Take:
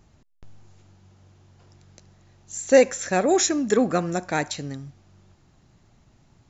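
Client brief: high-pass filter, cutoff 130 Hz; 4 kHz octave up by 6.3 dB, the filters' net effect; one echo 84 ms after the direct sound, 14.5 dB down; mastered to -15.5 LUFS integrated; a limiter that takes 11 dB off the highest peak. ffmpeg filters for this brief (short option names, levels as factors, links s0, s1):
-af "highpass=130,equalizer=f=4000:t=o:g=8,alimiter=limit=0.237:level=0:latency=1,aecho=1:1:84:0.188,volume=2.82"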